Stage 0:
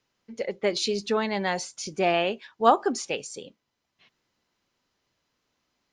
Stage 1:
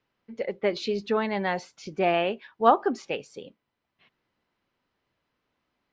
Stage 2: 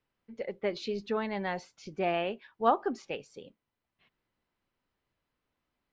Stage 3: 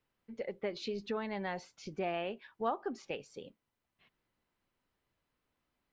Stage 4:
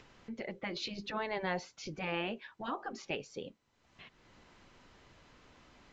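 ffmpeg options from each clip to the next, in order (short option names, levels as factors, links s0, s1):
-af "lowpass=2900"
-af "lowshelf=f=66:g=11.5,volume=0.473"
-af "acompressor=threshold=0.0141:ratio=2"
-af "acompressor=mode=upward:threshold=0.00355:ratio=2.5,afftfilt=real='re*lt(hypot(re,im),0.0891)':imag='im*lt(hypot(re,im),0.0891)':win_size=1024:overlap=0.75,volume=1.78" -ar 16000 -c:a sbc -b:a 192k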